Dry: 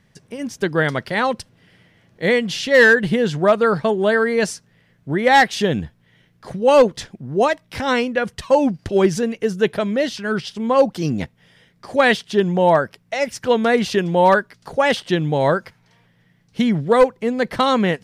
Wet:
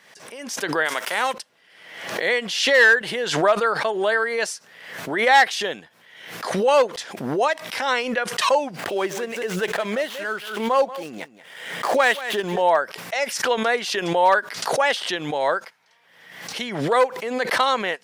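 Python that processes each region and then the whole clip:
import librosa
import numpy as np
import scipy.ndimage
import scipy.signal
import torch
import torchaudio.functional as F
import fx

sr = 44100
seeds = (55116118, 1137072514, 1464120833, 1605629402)

y = fx.envelope_flatten(x, sr, power=0.6, at=(0.85, 1.32), fade=0.02)
y = fx.highpass(y, sr, hz=200.0, slope=12, at=(0.85, 1.32), fade=0.02)
y = fx.peak_eq(y, sr, hz=4300.0, db=-9.0, octaves=0.4, at=(0.85, 1.32), fade=0.02)
y = fx.chain(y, sr, fx.median_filter(points=9),
    fx.echo_single(ms=184, db=-15.5), at=(8.73, 12.62))
y = scipy.signal.sosfilt(scipy.signal.butter(2, 630.0, 'highpass', fs=sr, output='sos'), y)
y = fx.pre_swell(y, sr, db_per_s=58.0)
y = F.gain(torch.from_numpy(y), -1.0).numpy()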